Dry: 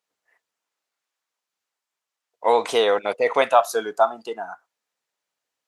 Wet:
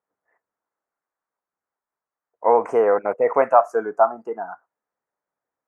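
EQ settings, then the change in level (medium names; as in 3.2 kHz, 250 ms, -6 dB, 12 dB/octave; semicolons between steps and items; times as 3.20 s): Butterworth band-stop 3.7 kHz, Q 0.54; distance through air 150 m; +2.5 dB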